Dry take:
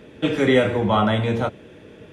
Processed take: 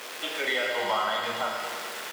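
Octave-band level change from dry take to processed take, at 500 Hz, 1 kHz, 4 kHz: −11.0, −4.0, 0.0 decibels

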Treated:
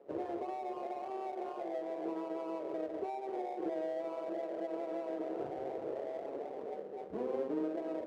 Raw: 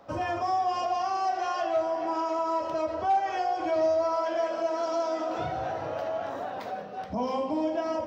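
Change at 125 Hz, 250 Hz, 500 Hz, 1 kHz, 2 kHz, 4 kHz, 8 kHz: −15.0 dB, −5.5 dB, −9.0 dB, −15.5 dB, −16.0 dB, below −15 dB, can't be measured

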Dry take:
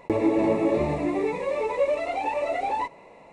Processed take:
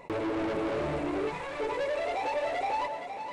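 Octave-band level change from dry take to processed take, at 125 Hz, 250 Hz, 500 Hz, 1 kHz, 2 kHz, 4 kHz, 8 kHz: −6.5 dB, −8.5 dB, −6.5 dB, −3.5 dB, −2.0 dB, +1.5 dB, can't be measured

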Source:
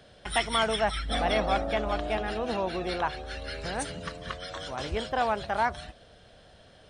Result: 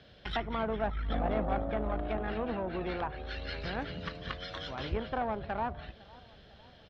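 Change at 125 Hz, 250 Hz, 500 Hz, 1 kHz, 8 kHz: −0.5 dB, −1.0 dB, −5.0 dB, −7.0 dB, below −25 dB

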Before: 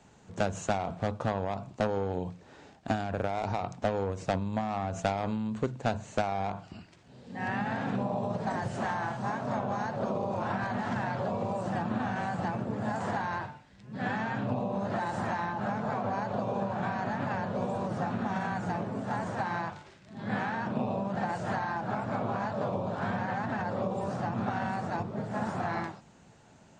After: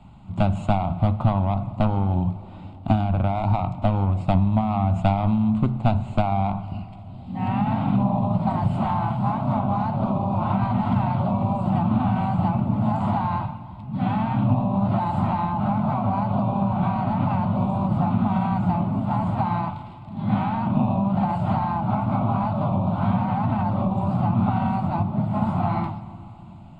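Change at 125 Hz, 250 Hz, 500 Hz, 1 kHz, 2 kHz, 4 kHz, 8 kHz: +14.5 dB, +11.5 dB, +2.5 dB, +7.5 dB, −3.5 dB, can't be measured, below −10 dB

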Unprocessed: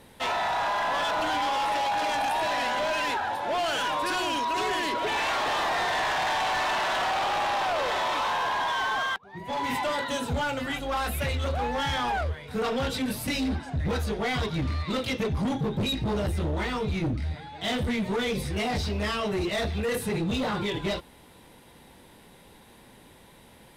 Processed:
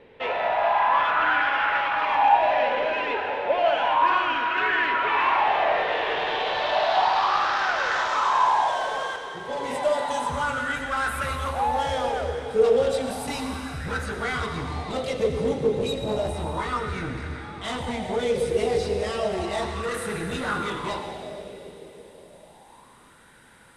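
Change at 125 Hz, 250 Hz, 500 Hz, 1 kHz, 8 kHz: −4.0, −3.0, +6.0, +5.0, −1.5 decibels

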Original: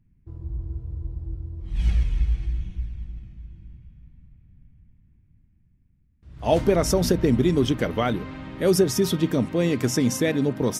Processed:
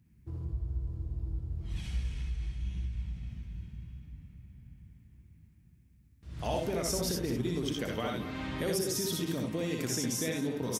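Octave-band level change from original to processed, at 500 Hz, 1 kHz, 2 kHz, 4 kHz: −12.0, −10.0, −8.0, −5.5 decibels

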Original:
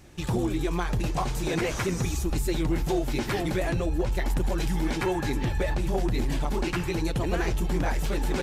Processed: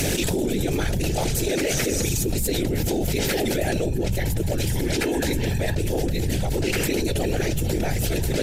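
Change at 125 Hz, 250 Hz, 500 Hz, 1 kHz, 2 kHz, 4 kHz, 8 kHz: +4.5, +3.5, +5.0, −1.0, +4.0, +8.0, +11.5 decibels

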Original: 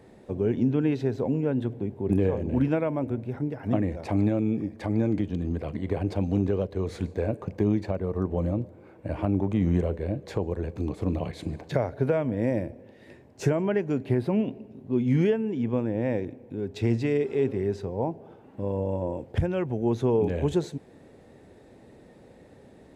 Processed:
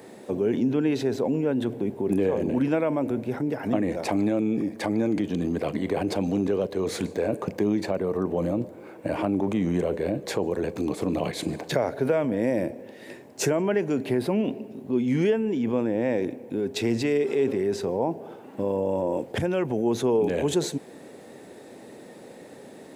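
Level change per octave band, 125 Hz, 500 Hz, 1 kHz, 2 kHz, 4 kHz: −5.0, +3.0, +4.0, +5.0, +9.5 decibels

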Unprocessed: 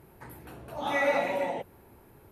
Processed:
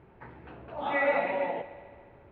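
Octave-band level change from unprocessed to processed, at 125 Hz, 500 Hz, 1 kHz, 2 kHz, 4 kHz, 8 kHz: −2.5 dB, 0.0 dB, 0.0 dB, 0.0 dB, −5.5 dB, below −25 dB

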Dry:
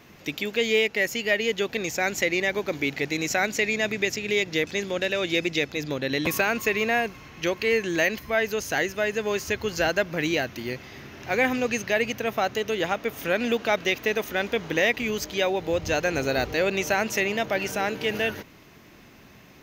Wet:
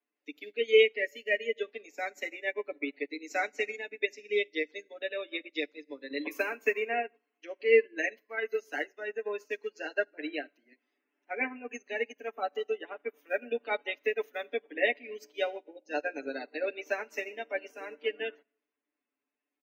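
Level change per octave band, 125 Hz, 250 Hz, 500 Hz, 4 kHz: below −30 dB, −13.5 dB, −5.5 dB, −10.5 dB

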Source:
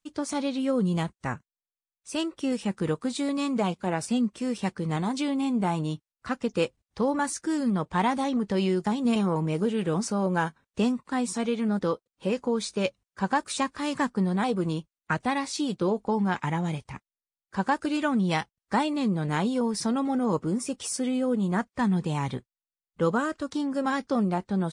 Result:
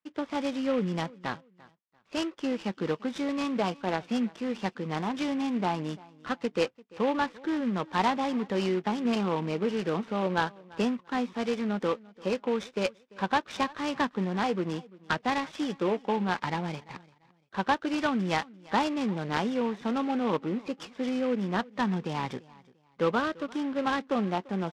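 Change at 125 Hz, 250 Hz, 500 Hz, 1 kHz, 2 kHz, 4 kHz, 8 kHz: −6.0, −3.5, −1.0, −0.5, 0.0, −1.0, −11.5 decibels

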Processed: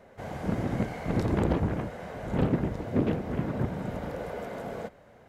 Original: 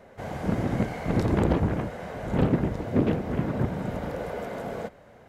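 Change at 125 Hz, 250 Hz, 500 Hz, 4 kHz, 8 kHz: −3.0 dB, −3.0 dB, −3.0 dB, −3.0 dB, can't be measured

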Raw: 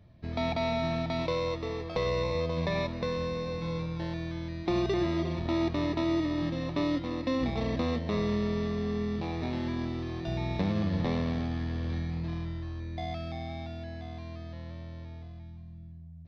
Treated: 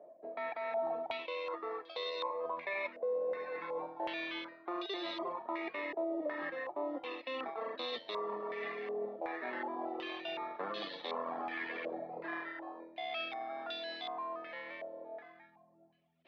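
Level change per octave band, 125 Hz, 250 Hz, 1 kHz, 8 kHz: below −35 dB, −15.5 dB, −1.5 dB, can't be measured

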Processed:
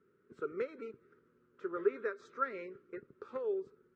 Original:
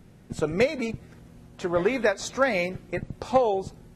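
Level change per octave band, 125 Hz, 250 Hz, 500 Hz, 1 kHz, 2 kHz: below −25 dB, −16.0 dB, −12.5 dB, −14.0 dB, −16.5 dB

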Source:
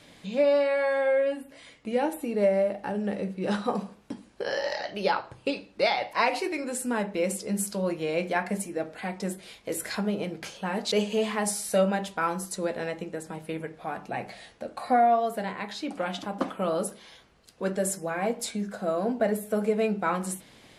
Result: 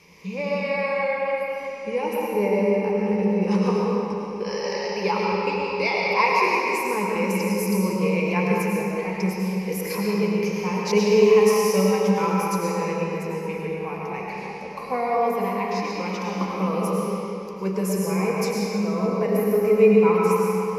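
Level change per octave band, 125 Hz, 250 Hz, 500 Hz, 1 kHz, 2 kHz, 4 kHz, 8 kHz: +10.0, +7.5, +6.0, +4.5, +5.5, +2.0, 0.0 decibels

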